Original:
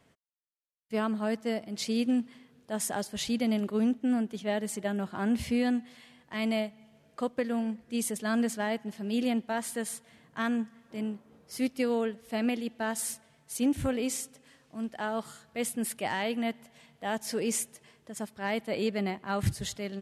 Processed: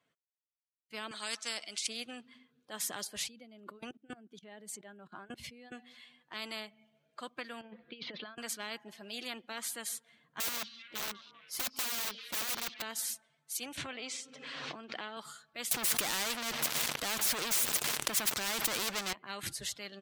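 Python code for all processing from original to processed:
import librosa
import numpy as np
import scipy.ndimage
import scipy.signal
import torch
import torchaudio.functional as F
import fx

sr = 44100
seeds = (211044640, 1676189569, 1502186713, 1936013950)

y = fx.chain(x, sr, fx.weighting(curve='ITU-R 468'),
    fx.over_compress(threshold_db=-30.0, ratio=-1.0), at=(1.11, 1.87))
y = fx.chain(y, sr, fx.dynamic_eq(hz=240.0, q=0.82, threshold_db=-34.0, ratio=4.0, max_db=3),
    fx.level_steps(step_db=22), at=(3.27, 5.72))
y = fx.chain(y, sr, fx.steep_lowpass(hz=4300.0, slope=48),
    fx.low_shelf(hz=61.0, db=-11.5),
    fx.over_compress(threshold_db=-36.0, ratio=-0.5), at=(7.61, 8.38))
y = fx.chain(y, sr, fx.overflow_wrap(gain_db=30.0),
    fx.echo_stepped(ms=195, hz=3900.0, octaves=-0.7, feedback_pct=70, wet_db=-11), at=(10.4, 12.82))
y = fx.chain(y, sr, fx.bandpass_edges(low_hz=130.0, high_hz=4700.0),
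    fx.pre_swell(db_per_s=34.0), at=(13.77, 15.17))
y = fx.chain(y, sr, fx.leveller(passes=5),
    fx.env_flatten(amount_pct=70), at=(15.71, 19.13))
y = fx.bin_expand(y, sr, power=1.5)
y = fx.highpass(y, sr, hz=510.0, slope=6)
y = fx.spectral_comp(y, sr, ratio=4.0)
y = F.gain(torch.from_numpy(y), 2.5).numpy()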